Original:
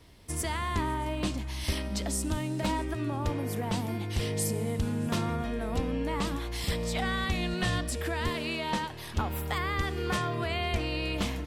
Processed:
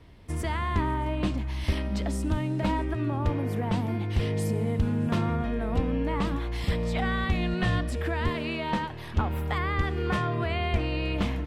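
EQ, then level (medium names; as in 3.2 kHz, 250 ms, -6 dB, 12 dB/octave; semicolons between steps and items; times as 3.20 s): tone controls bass +3 dB, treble -13 dB; +2.0 dB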